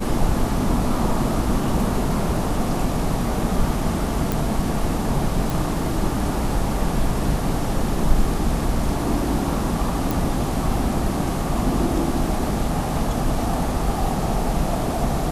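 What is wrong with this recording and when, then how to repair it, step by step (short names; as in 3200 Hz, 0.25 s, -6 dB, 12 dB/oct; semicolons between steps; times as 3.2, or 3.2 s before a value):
4.32 pop
5.5 pop
10.11 pop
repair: de-click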